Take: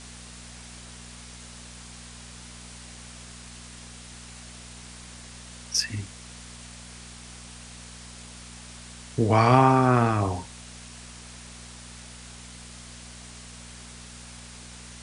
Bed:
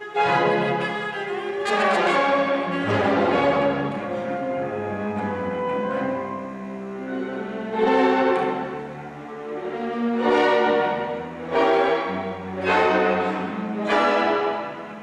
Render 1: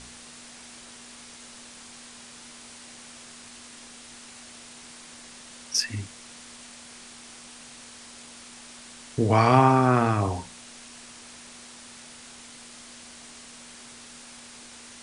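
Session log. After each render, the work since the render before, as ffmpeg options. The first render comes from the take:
ffmpeg -i in.wav -af "bandreject=frequency=60:width_type=h:width=4,bandreject=frequency=120:width_type=h:width=4,bandreject=frequency=180:width_type=h:width=4" out.wav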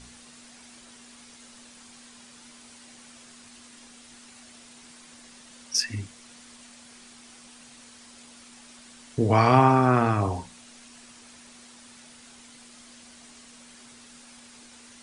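ffmpeg -i in.wav -af "afftdn=noise_reduction=6:noise_floor=-46" out.wav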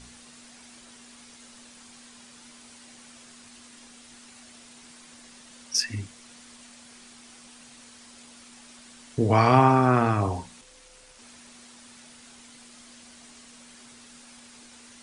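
ffmpeg -i in.wav -filter_complex "[0:a]asettb=1/sr,asplit=3[link_01][link_02][link_03];[link_01]atrim=end=10.614[link_04];[link_02]atrim=start=10.61:end=11.19,asetpts=PTS-STARTPTS,afade=type=in:duration=0.004:curve=qsin,afade=type=out:start_time=0.576:duration=0.004:curve=qsin,aeval=exprs='val(0)*sin(2*PI*270*n/s)':channel_layout=same[link_05];[link_03]atrim=start=11.186[link_06];[link_04][link_05]acrossfade=duration=0.004:curve1=hsin:curve2=qsin[link_07];[link_07][link_06]acrossfade=duration=0.004:curve1=qsin:curve2=hsin" out.wav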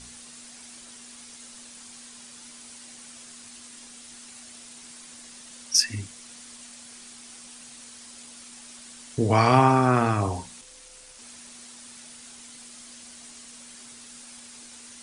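ffmpeg -i in.wav -af "aemphasis=mode=production:type=cd" out.wav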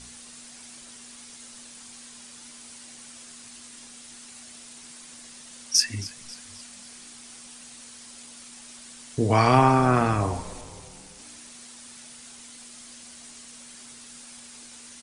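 ffmpeg -i in.wav -filter_complex "[0:a]asplit=5[link_01][link_02][link_03][link_04][link_05];[link_02]adelay=270,afreqshift=-100,volume=-18dB[link_06];[link_03]adelay=540,afreqshift=-200,volume=-23.7dB[link_07];[link_04]adelay=810,afreqshift=-300,volume=-29.4dB[link_08];[link_05]adelay=1080,afreqshift=-400,volume=-35dB[link_09];[link_01][link_06][link_07][link_08][link_09]amix=inputs=5:normalize=0" out.wav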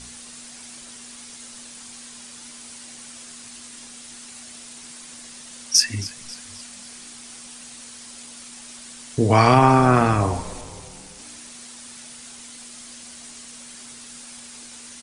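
ffmpeg -i in.wav -af "volume=4.5dB,alimiter=limit=-2dB:level=0:latency=1" out.wav

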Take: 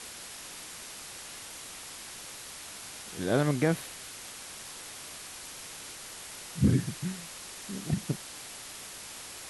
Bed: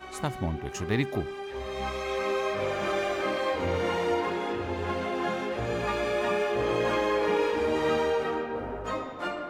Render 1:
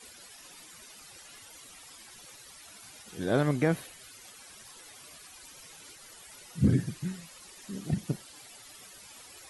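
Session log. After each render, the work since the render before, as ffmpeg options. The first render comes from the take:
ffmpeg -i in.wav -af "afftdn=noise_reduction=14:noise_floor=-45" out.wav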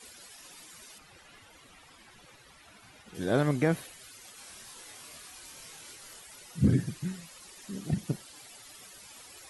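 ffmpeg -i in.wav -filter_complex "[0:a]asettb=1/sr,asplit=3[link_01][link_02][link_03];[link_01]atrim=end=0.984[link_04];[link_02]atrim=start=0.98:end=3.15,asetpts=PTS-STARTPTS,afade=type=in:duration=0.004:curve=qsin,afade=type=out:start_time=2.166:duration=0.004:curve=qsin,bass=frequency=250:gain=3,treble=frequency=4000:gain=-12[link_05];[link_03]atrim=start=3.146[link_06];[link_04][link_05]acrossfade=duration=0.004:curve1=hsin:curve2=qsin[link_07];[link_07][link_06]acrossfade=duration=0.004:curve1=qsin:curve2=hsin,asettb=1/sr,asplit=3[link_08][link_09][link_10];[link_08]atrim=end=4.354[link_11];[link_09]atrim=start=4.35:end=6.2,asetpts=PTS-STARTPTS,afade=type=in:duration=0.004:curve=qsin,afade=type=out:start_time=1.846:duration=0.004:curve=qsin,asplit=2[link_12][link_13];[link_13]adelay=26,volume=-2.5dB[link_14];[link_12][link_14]amix=inputs=2:normalize=0,atrim=end_sample=81585[link_15];[link_10]atrim=start=6.196[link_16];[link_11][link_15]acrossfade=duration=0.004:curve1=hsin:curve2=qsin[link_17];[link_17][link_16]acrossfade=duration=0.004:curve1=qsin:curve2=hsin" out.wav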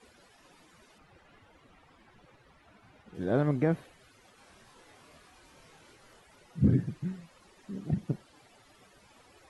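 ffmpeg -i in.wav -af "lowpass=frequency=1000:poles=1" out.wav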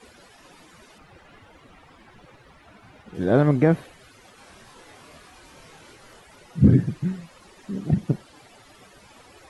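ffmpeg -i in.wav -af "volume=9dB" out.wav

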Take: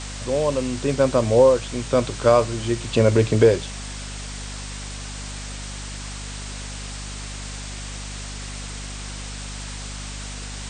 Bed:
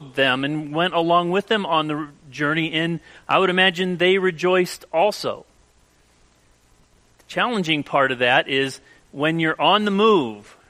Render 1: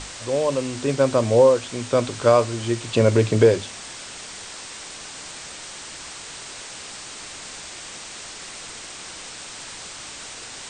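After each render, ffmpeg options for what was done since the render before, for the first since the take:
ffmpeg -i in.wav -af "bandreject=frequency=50:width_type=h:width=6,bandreject=frequency=100:width_type=h:width=6,bandreject=frequency=150:width_type=h:width=6,bandreject=frequency=200:width_type=h:width=6,bandreject=frequency=250:width_type=h:width=6" out.wav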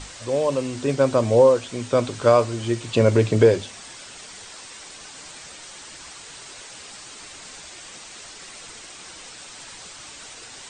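ffmpeg -i in.wav -af "afftdn=noise_reduction=6:noise_floor=-38" out.wav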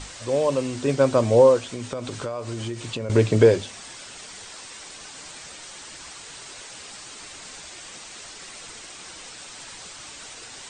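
ffmpeg -i in.wav -filter_complex "[0:a]asettb=1/sr,asplit=3[link_01][link_02][link_03];[link_01]atrim=end=1.714[link_04];[link_02]atrim=start=1.71:end=3.1,asetpts=PTS-STARTPTS,afade=type=in:duration=0.004:curve=qsin,afade=type=out:start_time=1.386:duration=0.004:curve=qsin,acompressor=threshold=-26dB:ratio=10:attack=3.2:release=140:knee=1:detection=peak[link_05];[link_03]atrim=start=3.096[link_06];[link_04][link_05]acrossfade=duration=0.004:curve1=hsin:curve2=qsin[link_07];[link_07][link_06]acrossfade=duration=0.004:curve1=qsin:curve2=hsin" out.wav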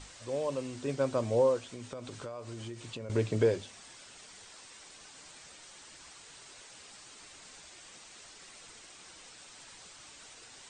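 ffmpeg -i in.wav -af "volume=-11.5dB" out.wav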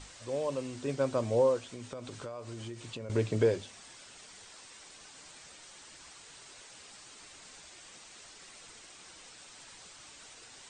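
ffmpeg -i in.wav -af anull out.wav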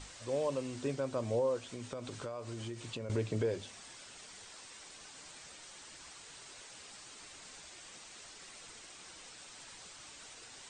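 ffmpeg -i in.wav -af "alimiter=level_in=0.5dB:limit=-24dB:level=0:latency=1:release=210,volume=-0.5dB" out.wav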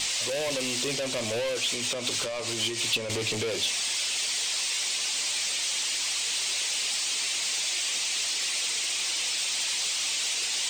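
ffmpeg -i in.wav -filter_complex "[0:a]asplit=2[link_01][link_02];[link_02]highpass=frequency=720:poles=1,volume=25dB,asoftclip=type=tanh:threshold=-24dB[link_03];[link_01][link_03]amix=inputs=2:normalize=0,lowpass=frequency=1300:poles=1,volume=-6dB,aexciter=amount=4.9:drive=8.2:freq=2200" out.wav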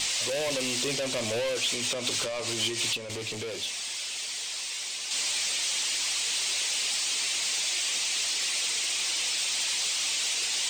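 ffmpeg -i in.wav -filter_complex "[0:a]asplit=3[link_01][link_02][link_03];[link_01]atrim=end=2.932[link_04];[link_02]atrim=start=2.928:end=5.112,asetpts=PTS-STARTPTS,volume=-5.5dB[link_05];[link_03]atrim=start=5.108[link_06];[link_04][link_05]acrossfade=duration=0.004:curve1=hsin:curve2=hsin[link_07];[link_07][link_06]acrossfade=duration=0.004:curve1=hsin:curve2=hsin" out.wav

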